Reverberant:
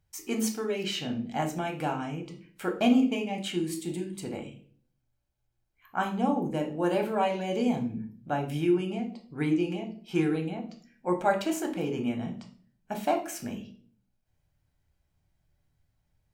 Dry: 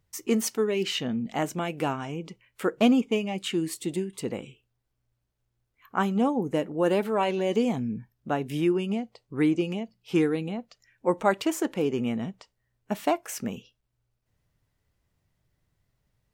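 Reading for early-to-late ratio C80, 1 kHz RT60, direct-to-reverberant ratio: 15.5 dB, 0.40 s, 3.0 dB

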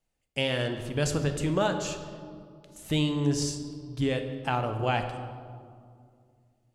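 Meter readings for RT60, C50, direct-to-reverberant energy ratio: 2.3 s, 8.0 dB, 6.0 dB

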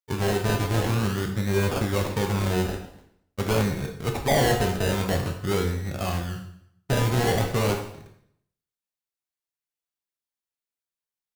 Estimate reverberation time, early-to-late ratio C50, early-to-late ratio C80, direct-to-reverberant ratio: 0.70 s, 7.5 dB, 10.0 dB, 2.5 dB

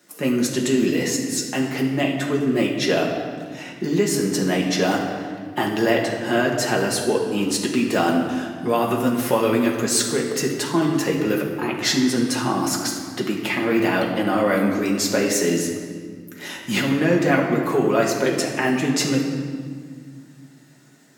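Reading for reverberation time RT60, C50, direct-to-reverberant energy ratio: 1.9 s, 4.0 dB, -2.0 dB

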